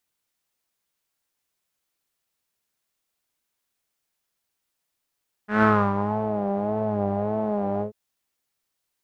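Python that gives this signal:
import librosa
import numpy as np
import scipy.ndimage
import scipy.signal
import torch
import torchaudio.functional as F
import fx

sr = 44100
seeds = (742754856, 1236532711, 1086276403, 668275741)

y = fx.sub_patch_vibrato(sr, seeds[0], note=56, wave='saw', wave2='saw', interval_st=-12, detune_cents=16, level2_db=-9.0, sub_db=-15.0, noise_db=-7.0, kind='lowpass', cutoff_hz=410.0, q=3.6, env_oct=2.0, env_decay_s=0.82, env_sustain_pct=40, attack_ms=146.0, decay_s=0.31, sustain_db=-10, release_s=0.11, note_s=2.33, lfo_hz=1.7, vibrato_cents=77)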